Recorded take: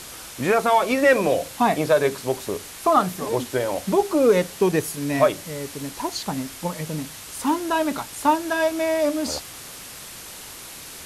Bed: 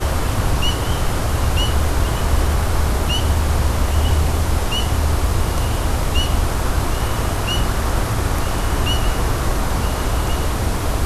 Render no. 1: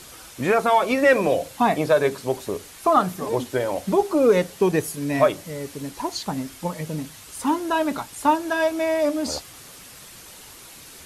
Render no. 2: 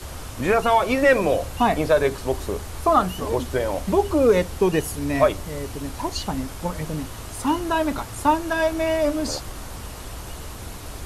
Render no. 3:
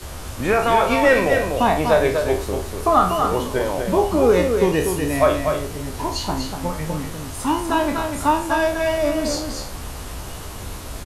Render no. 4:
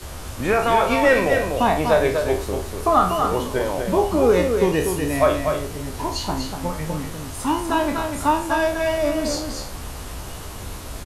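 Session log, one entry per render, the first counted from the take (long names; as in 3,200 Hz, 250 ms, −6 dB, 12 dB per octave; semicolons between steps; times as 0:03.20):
broadband denoise 6 dB, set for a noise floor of −39 dBFS
mix in bed −16.5 dB
peak hold with a decay on every bin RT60 0.43 s; single-tap delay 244 ms −5.5 dB
level −1 dB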